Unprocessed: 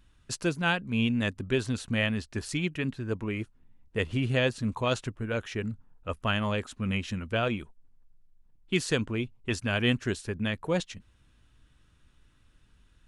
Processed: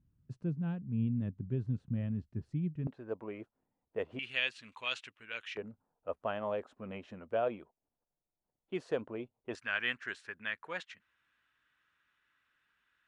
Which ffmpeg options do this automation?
ffmpeg -i in.wav -af "asetnsamples=nb_out_samples=441:pad=0,asendcmd='2.87 bandpass f 640;4.19 bandpass f 2600;5.57 bandpass f 620;9.55 bandpass f 1700',bandpass=frequency=140:width_type=q:width=1.9:csg=0" out.wav

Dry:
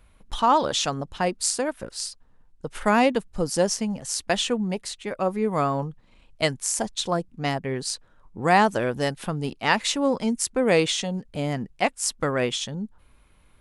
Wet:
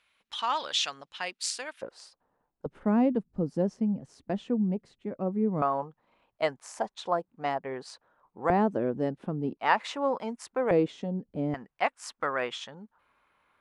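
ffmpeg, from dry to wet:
ffmpeg -i in.wav -af "asetnsamples=nb_out_samples=441:pad=0,asendcmd='1.82 bandpass f 690;2.66 bandpass f 220;5.62 bandpass f 860;8.5 bandpass f 290;9.57 bandpass f 930;10.71 bandpass f 290;11.54 bandpass f 1200',bandpass=frequency=2900:width_type=q:width=1.1:csg=0" out.wav

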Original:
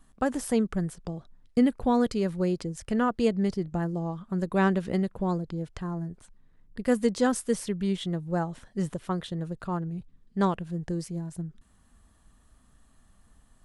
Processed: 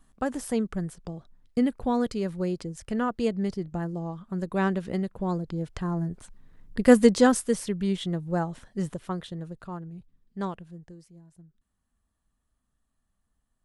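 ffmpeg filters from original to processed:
ffmpeg -i in.wav -af "volume=8.5dB,afade=type=in:start_time=5.16:duration=1.76:silence=0.298538,afade=type=out:start_time=6.92:duration=0.61:silence=0.421697,afade=type=out:start_time=8.48:duration=1.31:silence=0.398107,afade=type=out:start_time=10.49:duration=0.48:silence=0.298538" out.wav

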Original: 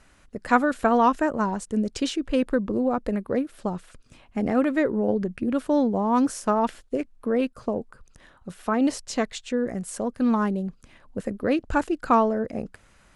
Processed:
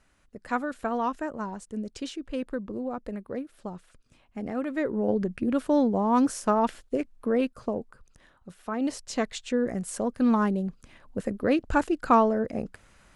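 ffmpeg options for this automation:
ffmpeg -i in.wav -af "volume=7.5dB,afade=type=in:start_time=4.64:duration=0.55:silence=0.398107,afade=type=out:start_time=7.29:duration=1.35:silence=0.398107,afade=type=in:start_time=8.64:duration=0.83:silence=0.375837" out.wav

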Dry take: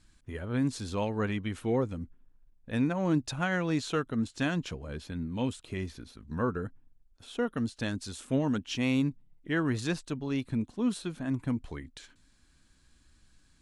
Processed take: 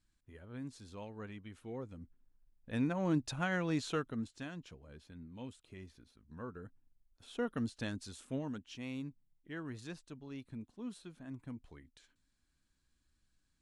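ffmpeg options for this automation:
ffmpeg -i in.wav -af "volume=5.5dB,afade=type=in:start_time=1.75:duration=1.19:silence=0.281838,afade=type=out:start_time=3.91:duration=0.54:silence=0.298538,afade=type=in:start_time=6.52:duration=1.06:silence=0.298538,afade=type=out:start_time=7.58:duration=1.11:silence=0.316228" out.wav

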